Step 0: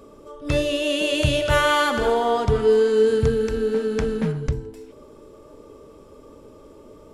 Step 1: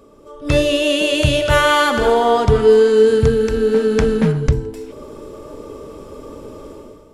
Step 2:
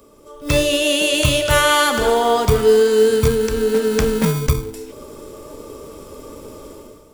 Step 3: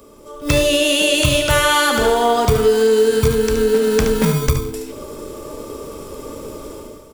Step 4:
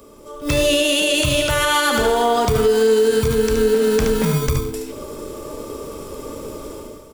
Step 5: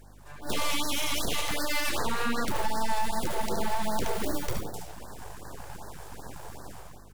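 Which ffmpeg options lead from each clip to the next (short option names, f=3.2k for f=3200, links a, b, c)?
-af "dynaudnorm=f=110:g=7:m=12.5dB,volume=-1dB"
-filter_complex "[0:a]acrossover=split=200|3400[a][b][c];[a]acrusher=samples=38:mix=1:aa=0.000001[d];[d][b][c]amix=inputs=3:normalize=0,crystalizer=i=2:c=0,volume=-2dB"
-filter_complex "[0:a]asplit=2[a][b];[b]aecho=0:1:72:0.398[c];[a][c]amix=inputs=2:normalize=0,acompressor=threshold=-18dB:ratio=2,volume=4dB"
-af "alimiter=limit=-7.5dB:level=0:latency=1:release=46"
-af "aeval=exprs='abs(val(0))':c=same,aeval=exprs='val(0)+0.00708*(sin(2*PI*50*n/s)+sin(2*PI*2*50*n/s)/2+sin(2*PI*3*50*n/s)/3+sin(2*PI*4*50*n/s)/4+sin(2*PI*5*50*n/s)/5)':c=same,afftfilt=real='re*(1-between(b*sr/1024,200*pow(2800/200,0.5+0.5*sin(2*PI*2.6*pts/sr))/1.41,200*pow(2800/200,0.5+0.5*sin(2*PI*2.6*pts/sr))*1.41))':imag='im*(1-between(b*sr/1024,200*pow(2800/200,0.5+0.5*sin(2*PI*2.6*pts/sr))/1.41,200*pow(2800/200,0.5+0.5*sin(2*PI*2.6*pts/sr))*1.41))':win_size=1024:overlap=0.75,volume=-8.5dB"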